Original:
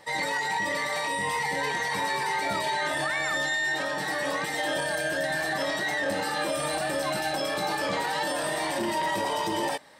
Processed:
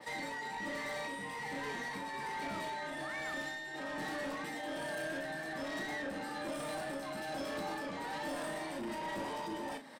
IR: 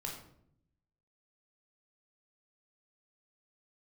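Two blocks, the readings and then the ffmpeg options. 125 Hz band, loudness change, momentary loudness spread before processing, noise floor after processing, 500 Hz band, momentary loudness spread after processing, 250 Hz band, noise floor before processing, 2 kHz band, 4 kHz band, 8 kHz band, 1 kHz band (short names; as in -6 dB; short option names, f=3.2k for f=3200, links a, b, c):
-10.5 dB, -12.0 dB, 2 LU, -43 dBFS, -11.0 dB, 2 LU, -6.5 dB, -31 dBFS, -12.5 dB, -14.5 dB, -15.0 dB, -12.0 dB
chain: -filter_complex "[0:a]highpass=120,equalizer=f=250:t=o:w=0.36:g=13,acrossover=split=400|2700[a][b][c];[c]acompressor=mode=upward:threshold=-53dB:ratio=2.5[d];[a][b][d]amix=inputs=3:normalize=0,alimiter=limit=-23.5dB:level=0:latency=1,acrossover=split=480[e][f];[f]acompressor=threshold=-33dB:ratio=4[g];[e][g]amix=inputs=2:normalize=0,tremolo=f=1.2:d=0.44,asoftclip=type=tanh:threshold=-36.5dB,asplit=2[h][i];[i]adelay=37,volume=-8.5dB[j];[h][j]amix=inputs=2:normalize=0,adynamicequalizer=threshold=0.00178:dfrequency=3100:dqfactor=0.7:tfrequency=3100:tqfactor=0.7:attack=5:release=100:ratio=0.375:range=2:mode=cutabove:tftype=highshelf"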